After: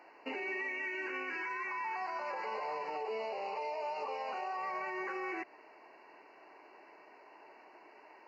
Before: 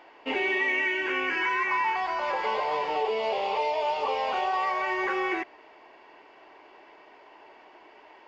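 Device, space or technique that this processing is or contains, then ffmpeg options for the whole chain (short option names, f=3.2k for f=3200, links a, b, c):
PA system with an anti-feedback notch: -filter_complex "[0:a]asettb=1/sr,asplit=3[a][b][c];[a]atrim=end=4.564[d];[b]atrim=start=4.56:end=5.05,asetpts=PTS-STARTPTS,afade=t=in:d=0.004:c=qsin,afade=t=out:st=0.486:d=0.004:c=qsin,bass=f=250:g=9,treble=f=4k:g=-2[e];[c]atrim=start=5.046[f];[d][e]acrossfade=d=0.004:c1=hsin:c2=qsin[g];[g][f]acrossfade=d=0.004:c1=qsin:c2=hsin,highpass=f=140:w=0.5412,highpass=f=140:w=1.3066,asuperstop=centerf=3400:order=12:qfactor=3,alimiter=level_in=1.5dB:limit=-24dB:level=0:latency=1:release=121,volume=-1.5dB,volume=-5dB"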